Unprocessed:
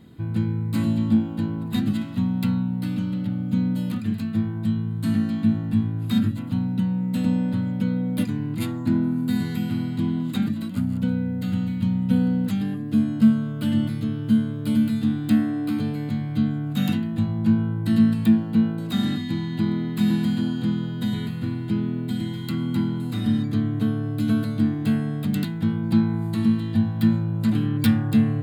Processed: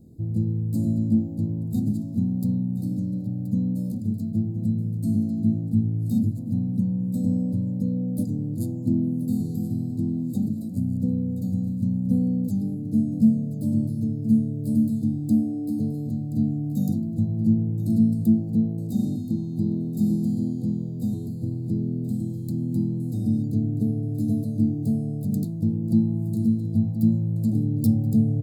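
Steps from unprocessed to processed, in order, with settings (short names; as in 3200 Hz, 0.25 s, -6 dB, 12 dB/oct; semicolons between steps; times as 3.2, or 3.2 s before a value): inverse Chebyshev band-stop 1300–2700 Hz, stop band 60 dB; low shelf 74 Hz +11 dB; on a send: echo 1.027 s -13 dB; on the sum: gain -3 dB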